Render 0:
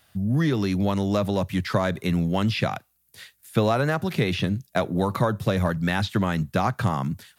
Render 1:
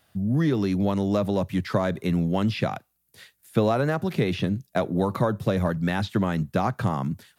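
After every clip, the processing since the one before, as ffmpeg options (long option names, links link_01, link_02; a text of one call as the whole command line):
ffmpeg -i in.wav -af "equalizer=frequency=330:width=0.39:gain=6,volume=-5dB" out.wav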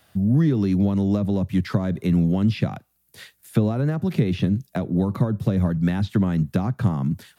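ffmpeg -i in.wav -filter_complex "[0:a]acrossover=split=300[link_01][link_02];[link_02]acompressor=threshold=-37dB:ratio=6[link_03];[link_01][link_03]amix=inputs=2:normalize=0,volume=5.5dB" out.wav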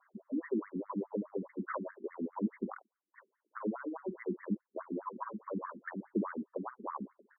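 ffmpeg -i in.wav -filter_complex "[0:a]highpass=frequency=170:width=0.5412,highpass=frequency=170:width=1.3066,equalizer=frequency=270:width_type=q:width=4:gain=-6,equalizer=frequency=730:width_type=q:width=4:gain=-8,equalizer=frequency=1000:width_type=q:width=4:gain=9,lowpass=frequency=2400:width=0.5412,lowpass=frequency=2400:width=1.3066,asplit=2[link_01][link_02];[link_02]adelay=48,volume=-12dB[link_03];[link_01][link_03]amix=inputs=2:normalize=0,afftfilt=real='re*between(b*sr/1024,270*pow(1600/270,0.5+0.5*sin(2*PI*4.8*pts/sr))/1.41,270*pow(1600/270,0.5+0.5*sin(2*PI*4.8*pts/sr))*1.41)':imag='im*between(b*sr/1024,270*pow(1600/270,0.5+0.5*sin(2*PI*4.8*pts/sr))/1.41,270*pow(1600/270,0.5+0.5*sin(2*PI*4.8*pts/sr))*1.41)':win_size=1024:overlap=0.75,volume=-4dB" out.wav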